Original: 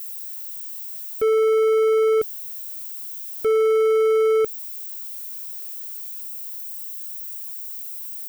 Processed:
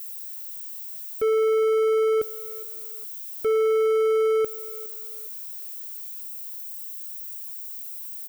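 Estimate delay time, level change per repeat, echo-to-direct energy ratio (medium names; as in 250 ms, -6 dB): 412 ms, -11.5 dB, -19.5 dB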